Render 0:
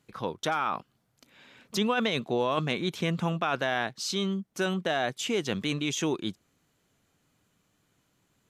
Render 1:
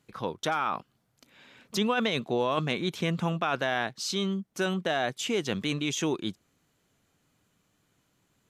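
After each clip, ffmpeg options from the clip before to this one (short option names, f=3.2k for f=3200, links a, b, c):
-af anull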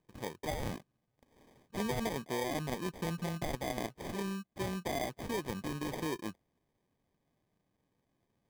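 -af "acrusher=samples=32:mix=1:aa=0.000001,volume=-8dB"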